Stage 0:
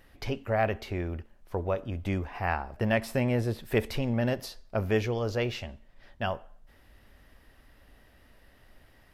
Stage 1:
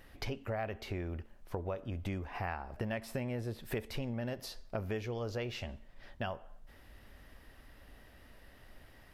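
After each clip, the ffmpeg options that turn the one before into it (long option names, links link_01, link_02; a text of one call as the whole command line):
ffmpeg -i in.wav -af "acompressor=threshold=-37dB:ratio=4,volume=1dB" out.wav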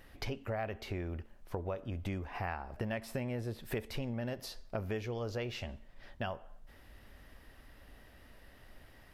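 ffmpeg -i in.wav -af anull out.wav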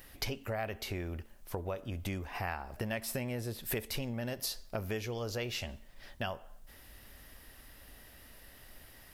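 ffmpeg -i in.wav -af "crystalizer=i=3:c=0" out.wav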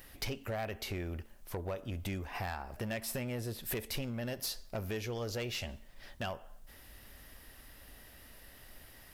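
ffmpeg -i in.wav -af "asoftclip=type=hard:threshold=-31.5dB" out.wav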